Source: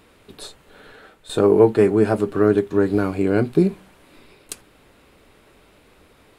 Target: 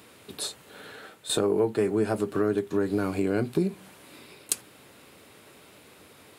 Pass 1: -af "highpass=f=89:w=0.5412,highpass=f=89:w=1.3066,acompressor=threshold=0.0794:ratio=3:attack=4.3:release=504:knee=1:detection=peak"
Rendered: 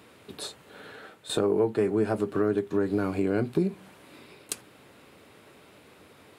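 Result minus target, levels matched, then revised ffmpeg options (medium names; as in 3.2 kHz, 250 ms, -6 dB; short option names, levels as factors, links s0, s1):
8 kHz band -6.5 dB
-af "highpass=f=89:w=0.5412,highpass=f=89:w=1.3066,acompressor=threshold=0.0794:ratio=3:attack=4.3:release=504:knee=1:detection=peak,highshelf=f=4300:g=8.5"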